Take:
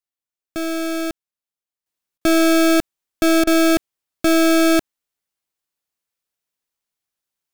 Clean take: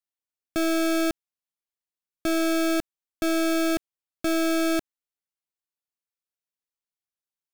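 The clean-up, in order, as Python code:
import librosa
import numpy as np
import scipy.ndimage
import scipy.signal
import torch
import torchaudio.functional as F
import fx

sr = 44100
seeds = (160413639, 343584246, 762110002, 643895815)

y = fx.fix_interpolate(x, sr, at_s=(2.18, 3.44), length_ms=30.0)
y = fx.gain(y, sr, db=fx.steps((0.0, 0.0), (1.86, -9.0)))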